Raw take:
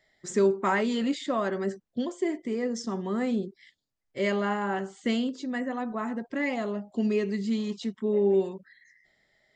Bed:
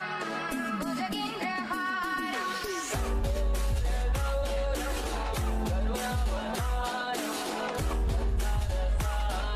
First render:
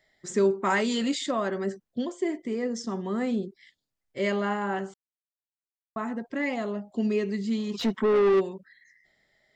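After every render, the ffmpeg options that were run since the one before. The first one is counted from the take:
ffmpeg -i in.wav -filter_complex "[0:a]asettb=1/sr,asplit=3[link_01][link_02][link_03];[link_01]atrim=end=0.704[link_04];[link_02]atrim=start=0.7:end=1.31,asetpts=PTS-STARTPTS,afade=type=in:duration=0.004:curve=qsin,afade=type=out:start_time=0.606:duration=0.004:curve=qsin,highshelf=frequency=3800:gain=11.5[link_05];[link_03]atrim=start=1.306[link_06];[link_04][link_05]acrossfade=duration=0.004:curve1=hsin:curve2=qsin[link_07];[link_07][link_06]acrossfade=duration=0.004:curve1=qsin:curve2=hsin,asplit=3[link_08][link_09][link_10];[link_08]afade=type=out:start_time=7.73:duration=0.02[link_11];[link_09]asplit=2[link_12][link_13];[link_13]highpass=frequency=720:poles=1,volume=27dB,asoftclip=type=tanh:threshold=-15dB[link_14];[link_12][link_14]amix=inputs=2:normalize=0,lowpass=frequency=1600:poles=1,volume=-6dB,afade=type=in:start_time=7.73:duration=0.02,afade=type=out:start_time=8.39:duration=0.02[link_15];[link_10]afade=type=in:start_time=8.39:duration=0.02[link_16];[link_11][link_15][link_16]amix=inputs=3:normalize=0,asplit=3[link_17][link_18][link_19];[link_17]atrim=end=4.94,asetpts=PTS-STARTPTS,afade=type=out:start_time=4.936:duration=0.004:curve=hsin[link_20];[link_18]atrim=start=4.94:end=5.96,asetpts=PTS-STARTPTS,volume=0[link_21];[link_19]atrim=start=5.96,asetpts=PTS-STARTPTS,afade=type=in:duration=0.004:curve=hsin[link_22];[link_20][link_21][link_22]concat=n=3:v=0:a=1" out.wav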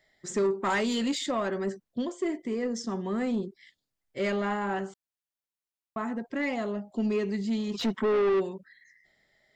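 ffmpeg -i in.wav -af "asoftclip=type=tanh:threshold=-20.5dB" out.wav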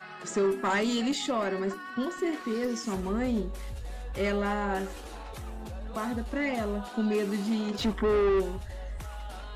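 ffmpeg -i in.wav -i bed.wav -filter_complex "[1:a]volume=-10dB[link_01];[0:a][link_01]amix=inputs=2:normalize=0" out.wav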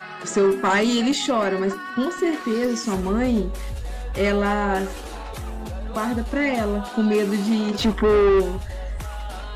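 ffmpeg -i in.wav -af "volume=8dB" out.wav

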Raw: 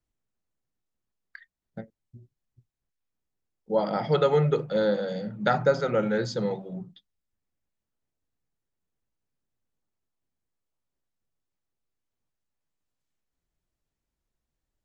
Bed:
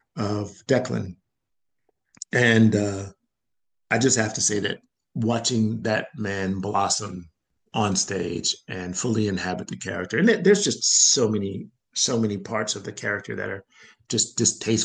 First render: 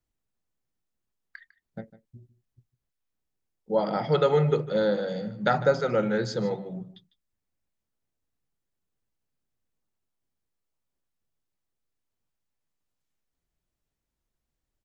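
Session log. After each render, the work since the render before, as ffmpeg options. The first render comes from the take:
ffmpeg -i in.wav -af "aecho=1:1:152:0.15" out.wav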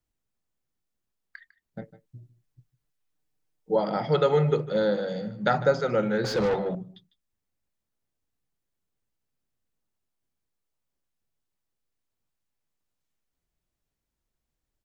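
ffmpeg -i in.wav -filter_complex "[0:a]asettb=1/sr,asplit=3[link_01][link_02][link_03];[link_01]atrim=end=1.814[link_04];[link_02]atrim=start=1.81:end=3.76,asetpts=PTS-STARTPTS,afade=type=in:duration=0.004:curve=qsin,afade=type=out:start_time=1.946:duration=0.004:curve=qsin,aecho=1:1:6.6:0.91,atrim=end_sample=85995[link_05];[link_03]atrim=start=3.756[link_06];[link_04][link_05]acrossfade=duration=0.004:curve1=hsin:curve2=qsin[link_07];[link_07][link_06]acrossfade=duration=0.004:curve1=qsin:curve2=hsin,asettb=1/sr,asplit=3[link_08][link_09][link_10];[link_08]atrim=end=6.244[link_11];[link_09]atrim=start=6.24:end=6.75,asetpts=PTS-STARTPTS,afade=type=in:duration=0.004:curve=qsin,afade=type=out:start_time=0.506:duration=0.004:curve=qsin,asplit=2[link_12][link_13];[link_13]highpass=frequency=720:poles=1,volume=24dB,asoftclip=type=tanh:threshold=-17dB[link_14];[link_12][link_14]amix=inputs=2:normalize=0,lowpass=frequency=1900:poles=1,volume=-6dB[link_15];[link_10]atrim=start=6.746[link_16];[link_11][link_15]acrossfade=duration=0.004:curve1=hsin:curve2=qsin[link_17];[link_17][link_16]acrossfade=duration=0.004:curve1=qsin:curve2=hsin" out.wav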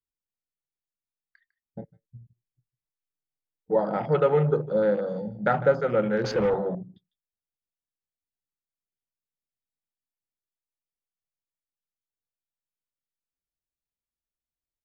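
ffmpeg -i in.wav -af "afwtdn=0.0141,equalizer=frequency=520:width_type=o:width=0.2:gain=2.5" out.wav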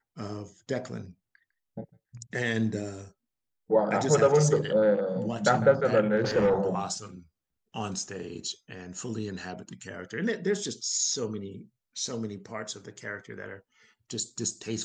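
ffmpeg -i in.wav -i bed.wav -filter_complex "[1:a]volume=-11dB[link_01];[0:a][link_01]amix=inputs=2:normalize=0" out.wav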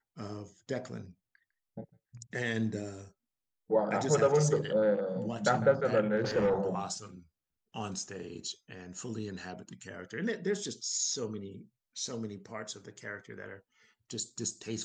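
ffmpeg -i in.wav -af "volume=-4.5dB" out.wav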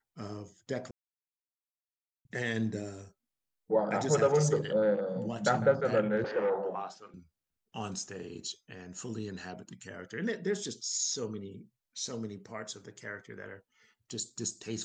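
ffmpeg -i in.wav -filter_complex "[0:a]asettb=1/sr,asplit=3[link_01][link_02][link_03];[link_01]atrim=end=6.244[link_04];[link_02]atrim=start=6.24:end=7.14,asetpts=PTS-STARTPTS,afade=type=in:duration=0.004:curve=qsin,afade=type=out:start_time=0.896:duration=0.004:curve=qsin,highpass=370,lowpass=2500[link_05];[link_03]atrim=start=7.136[link_06];[link_04][link_05]acrossfade=duration=0.004:curve1=hsin:curve2=qsin[link_07];[link_07][link_06]acrossfade=duration=0.004:curve1=qsin:curve2=hsin,asplit=3[link_08][link_09][link_10];[link_08]atrim=end=0.91,asetpts=PTS-STARTPTS,afade=type=out:start_time=0.906:duration=0.004:curve=hsin[link_11];[link_09]atrim=start=0.91:end=2.25,asetpts=PTS-STARTPTS,volume=0[link_12];[link_10]atrim=start=2.25,asetpts=PTS-STARTPTS,afade=type=in:duration=0.004:curve=hsin[link_13];[link_11][link_12][link_13]concat=n=3:v=0:a=1" out.wav

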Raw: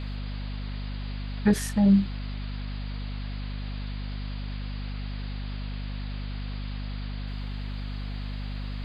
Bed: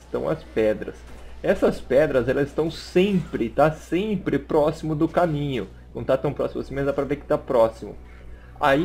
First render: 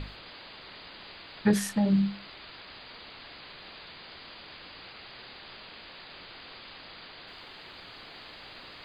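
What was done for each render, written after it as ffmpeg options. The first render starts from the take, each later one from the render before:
ffmpeg -i in.wav -af "bandreject=frequency=50:width_type=h:width=6,bandreject=frequency=100:width_type=h:width=6,bandreject=frequency=150:width_type=h:width=6,bandreject=frequency=200:width_type=h:width=6,bandreject=frequency=250:width_type=h:width=6" out.wav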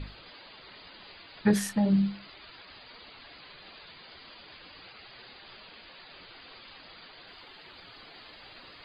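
ffmpeg -i in.wav -af "afftdn=noise_reduction=10:noise_floor=-48" out.wav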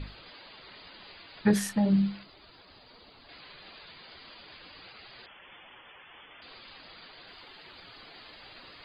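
ffmpeg -i in.wav -filter_complex "[0:a]asettb=1/sr,asplit=3[link_01][link_02][link_03];[link_01]atrim=end=2.234[link_04];[link_02]atrim=start=2.23:end=3.29,asetpts=PTS-STARTPTS,afade=type=in:duration=0.004:curve=qsin,afade=type=out:start_time=1.056:duration=0.004:curve=qsin,equalizer=frequency=2200:width=0.59:gain=-8.5[link_05];[link_03]atrim=start=3.286[link_06];[link_04][link_05]acrossfade=duration=0.004:curve1=hsin:curve2=qsin[link_07];[link_07][link_06]acrossfade=duration=0.004:curve1=qsin:curve2=hsin,asettb=1/sr,asplit=3[link_08][link_09][link_10];[link_08]atrim=end=5.264[link_11];[link_09]atrim=start=5.26:end=6.42,asetpts=PTS-STARTPTS,afade=type=in:duration=0.004:curve=qsin,afade=type=out:start_time=1.156:duration=0.004:curve=qsin,lowpass=frequency=3000:width_type=q:width=0.5098,lowpass=frequency=3000:width_type=q:width=0.6013,lowpass=frequency=3000:width_type=q:width=0.9,lowpass=frequency=3000:width_type=q:width=2.563,afreqshift=-3500[link_12];[link_10]atrim=start=6.416[link_13];[link_11][link_12]acrossfade=duration=0.004:curve1=hsin:curve2=qsin[link_14];[link_14][link_13]acrossfade=duration=0.004:curve1=qsin:curve2=hsin" out.wav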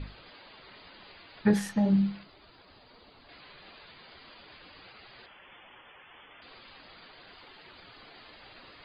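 ffmpeg -i in.wav -af "highshelf=frequency=4700:gain=-9,bandreject=frequency=165.6:width_type=h:width=4,bandreject=frequency=331.2:width_type=h:width=4,bandreject=frequency=496.8:width_type=h:width=4,bandreject=frequency=662.4:width_type=h:width=4,bandreject=frequency=828:width_type=h:width=4,bandreject=frequency=993.6:width_type=h:width=4,bandreject=frequency=1159.2:width_type=h:width=4,bandreject=frequency=1324.8:width_type=h:width=4,bandreject=frequency=1490.4:width_type=h:width=4,bandreject=frequency=1656:width_type=h:width=4,bandreject=frequency=1821.6:width_type=h:width=4,bandreject=frequency=1987.2:width_type=h:width=4,bandreject=frequency=2152.8:width_type=h:width=4,bandreject=frequency=2318.4:width_type=h:width=4,bandreject=frequency=2484:width_type=h:width=4,bandreject=frequency=2649.6:width_type=h:width=4,bandreject=frequency=2815.2:width_type=h:width=4,bandreject=frequency=2980.8:width_type=h:width=4,bandreject=frequency=3146.4:width_type=h:width=4,bandreject=frequency=3312:width_type=h:width=4,bandreject=frequency=3477.6:width_type=h:width=4,bandreject=frequency=3643.2:width_type=h:width=4,bandreject=frequency=3808.8:width_type=h:width=4,bandreject=frequency=3974.4:width_type=h:width=4,bandreject=frequency=4140:width_type=h:width=4,bandreject=frequency=4305.6:width_type=h:width=4,bandreject=frequency=4471.2:width_type=h:width=4,bandreject=frequency=4636.8:width_type=h:width=4,bandreject=frequency=4802.4:width_type=h:width=4,bandreject=frequency=4968:width_type=h:width=4,bandreject=frequency=5133.6:width_type=h:width=4,bandreject=frequency=5299.2:width_type=h:width=4,bandreject=frequency=5464.8:width_type=h:width=4,bandreject=frequency=5630.4:width_type=h:width=4,bandreject=frequency=5796:width_type=h:width=4,bandreject=frequency=5961.6:width_type=h:width=4,bandreject=frequency=6127.2:width_type=h:width=4,bandreject=frequency=6292.8:width_type=h:width=4,bandreject=frequency=6458.4:width_type=h:width=4" out.wav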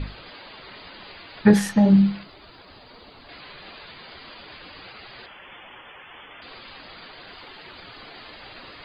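ffmpeg -i in.wav -af "volume=9dB" out.wav

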